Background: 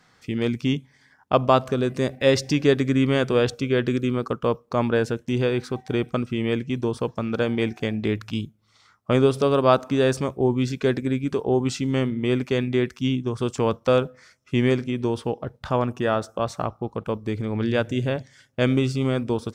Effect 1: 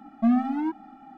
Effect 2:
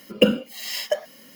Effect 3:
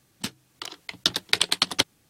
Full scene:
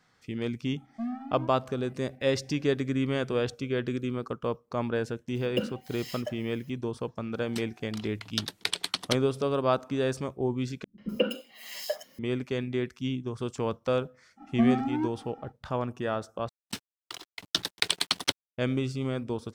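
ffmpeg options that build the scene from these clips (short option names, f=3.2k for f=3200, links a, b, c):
-filter_complex "[1:a]asplit=2[a][b];[2:a]asplit=2[c][d];[3:a]asplit=2[e][f];[0:a]volume=-8dB[g];[d]acrossover=split=210|3400[h][i][j];[i]adelay=140[k];[j]adelay=250[l];[h][k][l]amix=inputs=3:normalize=0[m];[f]acrusher=bits=6:mix=0:aa=0.5[n];[g]asplit=3[o][p][q];[o]atrim=end=10.844[r];[m]atrim=end=1.35,asetpts=PTS-STARTPTS,volume=-8dB[s];[p]atrim=start=12.186:end=16.494[t];[n]atrim=end=2.09,asetpts=PTS-STARTPTS,volume=-5dB[u];[q]atrim=start=18.576[v];[a]atrim=end=1.17,asetpts=PTS-STARTPTS,volume=-13dB,afade=t=in:d=0.004:c=hsin,afade=t=out:st=1.166:d=0.004:c=hsin,adelay=760[w];[c]atrim=end=1.35,asetpts=PTS-STARTPTS,volume=-13.5dB,afade=t=in:d=0.004:c=hsin,afade=t=out:st=1.346:d=0.004:c=hsin,adelay=5350[x];[e]atrim=end=2.09,asetpts=PTS-STARTPTS,volume=-8.5dB,afade=t=in:d=0.004:c=hsin,afade=t=out:st=2.086:d=0.004:c=hsin,adelay=7320[y];[b]atrim=end=1.17,asetpts=PTS-STARTPTS,volume=-2.5dB,afade=t=in:d=0.05,afade=t=out:st=1.12:d=0.05,adelay=14360[z];[r][s]acrossfade=d=0.004:c1=hsin:c2=hsin[aa];[aa][t]acrossfade=d=0.004:c1=hsin:c2=hsin[ab];[ab][u]acrossfade=d=0.004:c1=hsin:c2=hsin[ac];[ac][v]acrossfade=d=0.004:c1=hsin:c2=hsin[ad];[ad][w][x][y][z]amix=inputs=5:normalize=0"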